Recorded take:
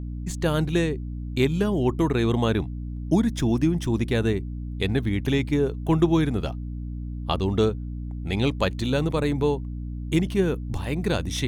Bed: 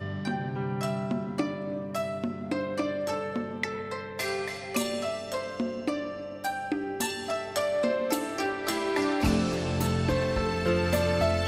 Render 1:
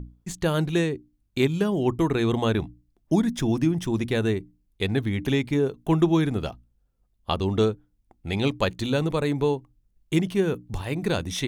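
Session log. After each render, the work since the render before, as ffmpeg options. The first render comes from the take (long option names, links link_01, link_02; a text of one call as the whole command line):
ffmpeg -i in.wav -af "bandreject=frequency=60:width_type=h:width=6,bandreject=frequency=120:width_type=h:width=6,bandreject=frequency=180:width_type=h:width=6,bandreject=frequency=240:width_type=h:width=6,bandreject=frequency=300:width_type=h:width=6" out.wav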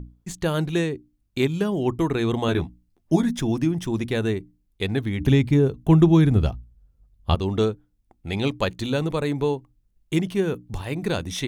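ffmpeg -i in.wav -filter_complex "[0:a]asettb=1/sr,asplit=3[link_01][link_02][link_03];[link_01]atrim=end=2.474[link_04];[link_02]atrim=start=2.47:end=3.4,asetpts=PTS-STARTPTS,afade=type=in:duration=0.004:curve=qsin,afade=type=out:start_time=0.926:duration=0.004:curve=qsin,asplit=2[link_05][link_06];[link_06]adelay=12,volume=-3dB[link_07];[link_05][link_07]amix=inputs=2:normalize=0,atrim=end_sample=41013[link_08];[link_03]atrim=start=3.396[link_09];[link_04][link_08]acrossfade=duration=0.004:curve1=hsin:curve2=qsin[link_10];[link_10][link_09]acrossfade=duration=0.004:curve1=qsin:curve2=hsin,asettb=1/sr,asplit=3[link_11][link_12][link_13];[link_11]atrim=end=5.204[link_14];[link_12]atrim=start=5.2:end=7.35,asetpts=PTS-STARTPTS,afade=type=in:duration=0.004:curve=qsin,afade=type=out:start_time=2.146:duration=0.004:curve=qsin,equalizer=frequency=64:width_type=o:width=2.9:gain=15[link_15];[link_13]atrim=start=7.346[link_16];[link_14][link_15]acrossfade=duration=0.004:curve1=hsin:curve2=qsin[link_17];[link_17][link_16]acrossfade=duration=0.004:curve1=qsin:curve2=hsin" out.wav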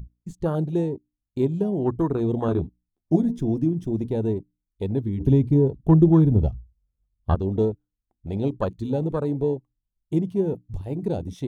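ffmpeg -i in.wav -af "afwtdn=0.0501,equalizer=frequency=2000:width=1.1:gain=-5.5" out.wav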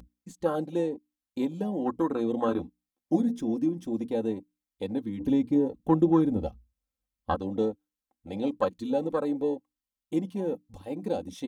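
ffmpeg -i in.wav -af "highpass=frequency=500:poles=1,aecho=1:1:3.8:0.73" out.wav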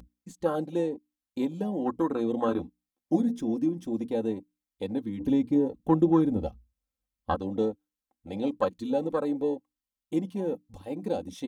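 ffmpeg -i in.wav -af anull out.wav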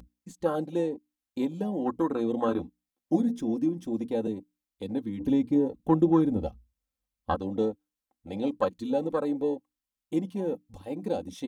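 ffmpeg -i in.wav -filter_complex "[0:a]asettb=1/sr,asplit=3[link_01][link_02][link_03];[link_01]atrim=end=4.274[link_04];[link_02]atrim=start=4.27:end=4.89,asetpts=PTS-STARTPTS,afade=type=in:duration=0.004:curve=qsin,afade=type=out:start_time=0.616:duration=0.004:curve=qsin,acrossover=split=420|3000[link_05][link_06][link_07];[link_06]acompressor=threshold=-46dB:ratio=3:attack=3.2:release=140:knee=2.83:detection=peak[link_08];[link_05][link_08][link_07]amix=inputs=3:normalize=0[link_09];[link_03]atrim=start=4.886[link_10];[link_04][link_09]acrossfade=duration=0.004:curve1=hsin:curve2=qsin[link_11];[link_11][link_10]acrossfade=duration=0.004:curve1=qsin:curve2=hsin" out.wav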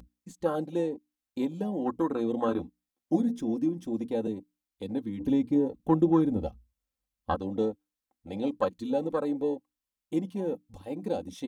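ffmpeg -i in.wav -af "volume=-1dB" out.wav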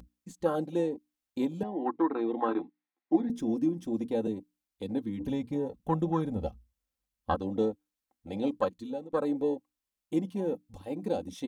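ffmpeg -i in.wav -filter_complex "[0:a]asettb=1/sr,asplit=3[link_01][link_02][link_03];[link_01]atrim=end=1.634[link_04];[link_02]atrim=start=1.63:end=3.3,asetpts=PTS-STARTPTS,afade=type=in:duration=0.004:curve=qsin,afade=type=out:start_time=1.666:duration=0.004:curve=qsin,highpass=320,equalizer=frequency=330:width_type=q:width=4:gain=5,equalizer=frequency=540:width_type=q:width=4:gain=-7,equalizer=frequency=860:width_type=q:width=4:gain=5,equalizer=frequency=2000:width_type=q:width=4:gain=6,equalizer=frequency=3100:width_type=q:width=4:gain=-6,lowpass=frequency=3800:width=0.5412,lowpass=frequency=3800:width=1.3066[link_05];[link_03]atrim=start=3.296[link_06];[link_04][link_05]acrossfade=duration=0.004:curve1=hsin:curve2=qsin[link_07];[link_07][link_06]acrossfade=duration=0.004:curve1=qsin:curve2=hsin,asettb=1/sr,asplit=3[link_08][link_09][link_10];[link_08]atrim=end=5.274[link_11];[link_09]atrim=start=5.27:end=6.44,asetpts=PTS-STARTPTS,afade=type=in:duration=0.004:curve=qsin,afade=type=out:start_time=1.166:duration=0.004:curve=qsin,equalizer=frequency=310:width=1.9:gain=-9.5[link_12];[link_10]atrim=start=6.436[link_13];[link_11][link_12]acrossfade=duration=0.004:curve1=hsin:curve2=qsin[link_14];[link_14][link_13]acrossfade=duration=0.004:curve1=qsin:curve2=hsin,asplit=2[link_15][link_16];[link_15]atrim=end=9.13,asetpts=PTS-STARTPTS,afade=type=out:start_time=8.55:duration=0.58:silence=0.112202[link_17];[link_16]atrim=start=9.13,asetpts=PTS-STARTPTS,afade=type=in:duration=0.004:curve=hsin:silence=0.112202[link_18];[link_17][link_18]concat=n=2:v=0:a=1" out.wav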